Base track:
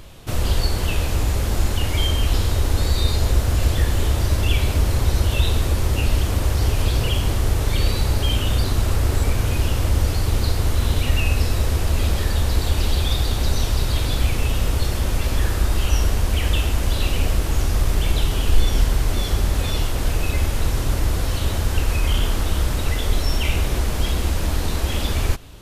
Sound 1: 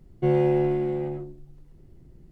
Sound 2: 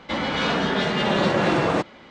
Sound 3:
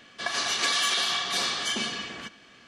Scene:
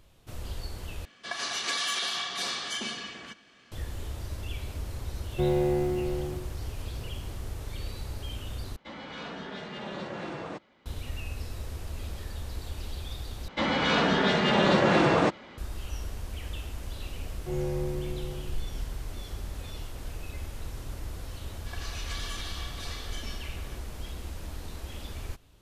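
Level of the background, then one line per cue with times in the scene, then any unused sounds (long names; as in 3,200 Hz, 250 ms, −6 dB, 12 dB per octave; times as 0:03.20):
base track −17.5 dB
0:01.05: overwrite with 3 −5 dB
0:05.16: mix in 1 −5 dB + mu-law and A-law mismatch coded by mu
0:08.76: overwrite with 2 −17 dB
0:13.48: overwrite with 2 −1.5 dB
0:17.24: mix in 1 −13.5 dB + four-comb reverb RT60 1 s, DRR 2 dB
0:21.47: mix in 3 −14.5 dB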